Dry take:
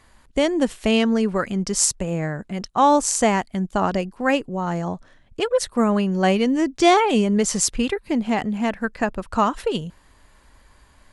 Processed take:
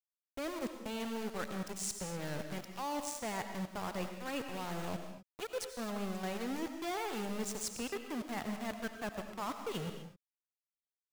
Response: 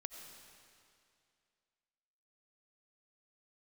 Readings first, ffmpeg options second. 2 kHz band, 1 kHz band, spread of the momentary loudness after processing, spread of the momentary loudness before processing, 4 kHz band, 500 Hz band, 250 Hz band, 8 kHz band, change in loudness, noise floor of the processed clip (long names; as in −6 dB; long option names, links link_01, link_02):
−16.0 dB, −19.5 dB, 4 LU, 10 LU, −16.5 dB, −19.0 dB, −19.5 dB, −18.5 dB, −18.5 dB, below −85 dBFS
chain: -filter_complex "[0:a]bandreject=frequency=3100:width=15,areverse,acompressor=threshold=-32dB:ratio=8,areverse,aeval=exprs='val(0)*gte(abs(val(0)),0.0188)':channel_layout=same[link_01];[1:a]atrim=start_sample=2205,afade=type=out:start_time=0.31:duration=0.01,atrim=end_sample=14112[link_02];[link_01][link_02]afir=irnorm=-1:irlink=0"